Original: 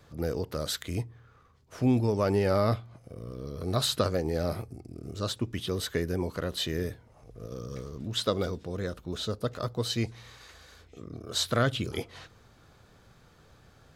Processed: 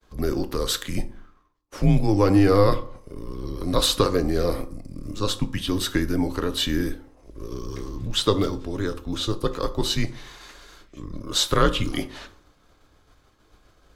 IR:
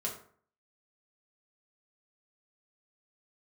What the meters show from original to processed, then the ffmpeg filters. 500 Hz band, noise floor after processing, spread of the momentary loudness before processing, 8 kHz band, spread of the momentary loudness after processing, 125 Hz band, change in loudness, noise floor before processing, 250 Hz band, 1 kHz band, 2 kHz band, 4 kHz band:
+5.5 dB, −60 dBFS, 18 LU, +7.0 dB, 19 LU, +5.0 dB, +6.5 dB, −59 dBFS, +8.0 dB, +7.5 dB, +5.5 dB, +7.0 dB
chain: -filter_complex "[0:a]agate=range=-33dB:threshold=-50dB:ratio=3:detection=peak,asplit=2[link_01][link_02];[1:a]atrim=start_sample=2205,asetrate=40572,aresample=44100[link_03];[link_02][link_03]afir=irnorm=-1:irlink=0,volume=-8dB[link_04];[link_01][link_04]amix=inputs=2:normalize=0,afreqshift=-99,volume=4.5dB"

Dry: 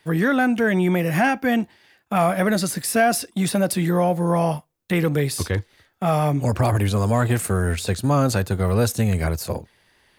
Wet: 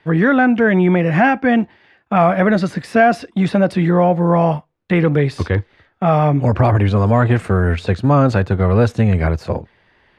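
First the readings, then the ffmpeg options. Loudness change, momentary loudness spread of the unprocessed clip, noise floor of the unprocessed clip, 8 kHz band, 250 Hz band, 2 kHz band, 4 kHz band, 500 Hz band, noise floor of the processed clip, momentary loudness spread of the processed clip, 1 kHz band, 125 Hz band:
+5.5 dB, 6 LU, −62 dBFS, below −15 dB, +6.0 dB, +5.0 dB, −2.5 dB, +6.0 dB, −58 dBFS, 6 LU, +6.0 dB, +6.0 dB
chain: -af "lowpass=2500,volume=6dB"

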